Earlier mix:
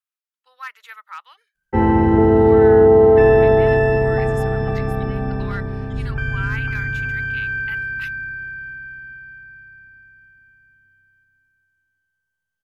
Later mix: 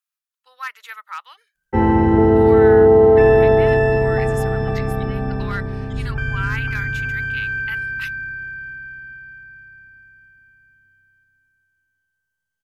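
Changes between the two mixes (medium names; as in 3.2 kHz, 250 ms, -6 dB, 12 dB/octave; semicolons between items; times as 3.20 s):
speech +3.5 dB; master: add tone controls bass 0 dB, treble +3 dB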